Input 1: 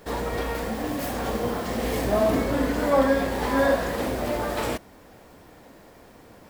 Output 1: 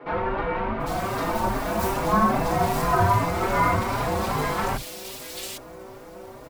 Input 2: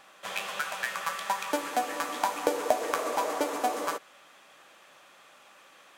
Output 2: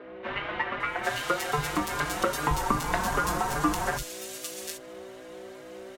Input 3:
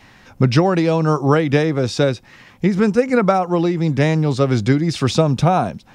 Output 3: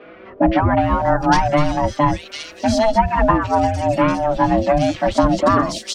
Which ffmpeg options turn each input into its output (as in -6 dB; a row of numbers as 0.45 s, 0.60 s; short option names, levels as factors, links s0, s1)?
-filter_complex "[0:a]aeval=exprs='val(0)+0.00447*(sin(2*PI*60*n/s)+sin(2*PI*2*60*n/s)/2+sin(2*PI*3*60*n/s)/3+sin(2*PI*4*60*n/s)/4+sin(2*PI*5*60*n/s)/5)':c=same,aeval=exprs='val(0)*sin(2*PI*440*n/s)':c=same,acrossover=split=160|2800[s0][s1][s2];[s0]adelay=40[s3];[s2]adelay=800[s4];[s3][s1][s4]amix=inputs=3:normalize=0,asplit=2[s5][s6];[s6]acompressor=threshold=0.0224:ratio=6,volume=0.794[s7];[s5][s7]amix=inputs=2:normalize=0,asplit=2[s8][s9];[s9]adelay=4.5,afreqshift=2.5[s10];[s8][s10]amix=inputs=2:normalize=1,volume=1.88"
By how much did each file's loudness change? +0.5 LU, +1.5 LU, -0.5 LU